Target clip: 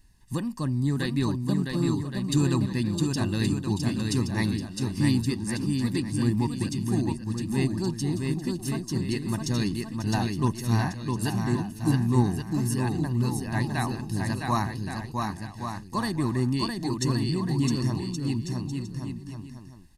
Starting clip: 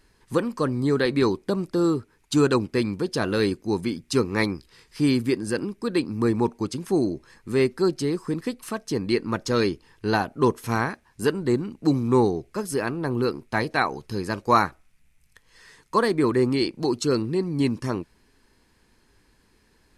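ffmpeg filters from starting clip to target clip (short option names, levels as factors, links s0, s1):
-af "equalizer=f=1100:w=0.34:g=-11.5,aecho=1:1:1.1:0.76,aecho=1:1:660|1122|1445|1672|1830:0.631|0.398|0.251|0.158|0.1"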